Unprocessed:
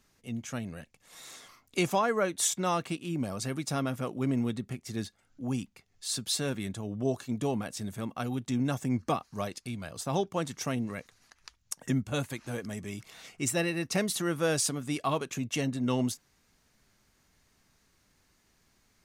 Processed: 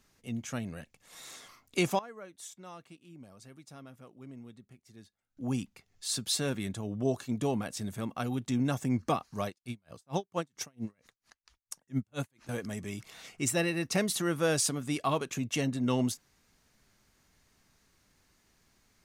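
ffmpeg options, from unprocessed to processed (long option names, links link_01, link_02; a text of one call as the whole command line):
ffmpeg -i in.wav -filter_complex "[0:a]asettb=1/sr,asplit=3[link_01][link_02][link_03];[link_01]atrim=end=9.484[link_04];[link_02]atrim=start=9.48:end=12.49,asetpts=PTS-STARTPTS,afade=type=in:duration=0.004:curve=qsin,afade=type=out:start_time=3.006:duration=0.004:curve=qsin,aeval=exprs='val(0)*pow(10,-39*(0.5-0.5*cos(2*PI*4.4*n/s))/20)':channel_layout=same[link_05];[link_03]atrim=start=12.486[link_06];[link_04][link_05]acrossfade=duration=0.004:curve1=hsin:curve2=qsin[link_07];[link_07][link_06]acrossfade=duration=0.004:curve1=qsin:curve2=hsin,asplit=3[link_08][link_09][link_10];[link_08]atrim=end=1.99,asetpts=PTS-STARTPTS,afade=type=out:start_time=1.86:duration=0.13:curve=log:silence=0.11885[link_11];[link_09]atrim=start=1.99:end=5.37,asetpts=PTS-STARTPTS,volume=-18.5dB[link_12];[link_10]atrim=start=5.37,asetpts=PTS-STARTPTS,afade=type=in:duration=0.13:curve=log:silence=0.11885[link_13];[link_11][link_12][link_13]concat=n=3:v=0:a=1" out.wav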